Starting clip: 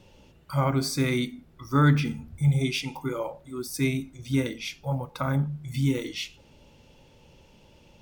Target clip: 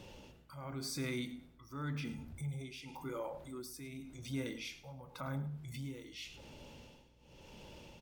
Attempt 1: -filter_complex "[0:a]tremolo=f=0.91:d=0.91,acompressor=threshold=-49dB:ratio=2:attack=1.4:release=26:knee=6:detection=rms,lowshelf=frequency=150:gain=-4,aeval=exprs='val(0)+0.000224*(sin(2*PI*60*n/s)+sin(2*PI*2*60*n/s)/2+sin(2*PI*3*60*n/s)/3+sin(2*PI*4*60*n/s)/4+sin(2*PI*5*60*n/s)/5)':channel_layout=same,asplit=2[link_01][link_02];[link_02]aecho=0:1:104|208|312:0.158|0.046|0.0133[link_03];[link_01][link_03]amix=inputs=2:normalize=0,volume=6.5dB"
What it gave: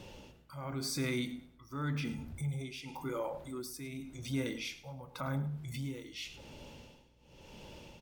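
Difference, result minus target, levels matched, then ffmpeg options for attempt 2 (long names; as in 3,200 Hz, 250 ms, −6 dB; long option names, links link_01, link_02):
downward compressor: peak gain reduction −4 dB
-filter_complex "[0:a]tremolo=f=0.91:d=0.91,acompressor=threshold=-57.5dB:ratio=2:attack=1.4:release=26:knee=6:detection=rms,lowshelf=frequency=150:gain=-4,aeval=exprs='val(0)+0.000224*(sin(2*PI*60*n/s)+sin(2*PI*2*60*n/s)/2+sin(2*PI*3*60*n/s)/3+sin(2*PI*4*60*n/s)/4+sin(2*PI*5*60*n/s)/5)':channel_layout=same,asplit=2[link_01][link_02];[link_02]aecho=0:1:104|208|312:0.158|0.046|0.0133[link_03];[link_01][link_03]amix=inputs=2:normalize=0,volume=6.5dB"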